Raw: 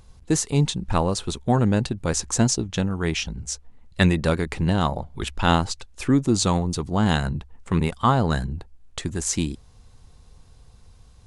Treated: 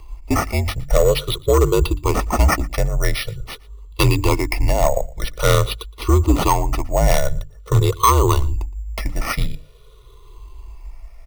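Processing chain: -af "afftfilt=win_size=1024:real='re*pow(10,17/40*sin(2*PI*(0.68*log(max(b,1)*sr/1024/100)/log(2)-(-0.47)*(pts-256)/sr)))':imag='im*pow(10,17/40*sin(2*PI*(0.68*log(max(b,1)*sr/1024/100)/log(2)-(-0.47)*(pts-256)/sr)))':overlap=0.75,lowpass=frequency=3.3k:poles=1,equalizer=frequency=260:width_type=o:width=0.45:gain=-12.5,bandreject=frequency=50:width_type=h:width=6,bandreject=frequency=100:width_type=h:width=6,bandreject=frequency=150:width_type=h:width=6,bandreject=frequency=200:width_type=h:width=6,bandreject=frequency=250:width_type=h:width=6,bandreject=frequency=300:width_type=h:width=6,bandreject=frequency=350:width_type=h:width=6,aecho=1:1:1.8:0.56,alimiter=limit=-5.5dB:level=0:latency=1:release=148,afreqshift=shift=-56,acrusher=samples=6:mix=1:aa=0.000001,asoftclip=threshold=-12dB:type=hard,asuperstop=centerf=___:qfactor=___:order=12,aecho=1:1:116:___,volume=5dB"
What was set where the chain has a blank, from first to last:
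1600, 5.7, 0.0708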